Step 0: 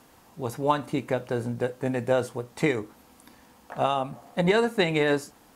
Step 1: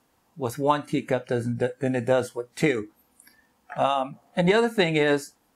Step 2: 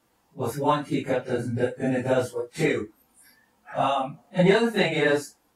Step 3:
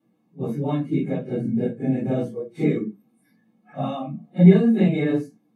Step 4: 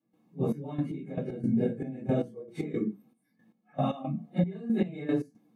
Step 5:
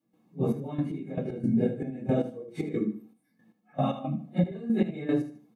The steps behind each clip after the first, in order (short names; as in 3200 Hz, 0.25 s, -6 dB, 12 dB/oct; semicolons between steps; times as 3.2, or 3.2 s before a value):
spectral noise reduction 16 dB; in parallel at -2.5 dB: compressor, threshold -30 dBFS, peak gain reduction 12.5 dB
phase scrambler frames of 0.1 s; attack slew limiter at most 420 dB/s
reverb RT60 0.20 s, pre-delay 3 ms, DRR -0.5 dB; gain -17 dB
compressor 8:1, threshold -22 dBFS, peak gain reduction 15.5 dB; step gate ".xxx..x..x" 115 bpm -12 dB
feedback echo 77 ms, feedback 32%, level -13 dB; gain +1.5 dB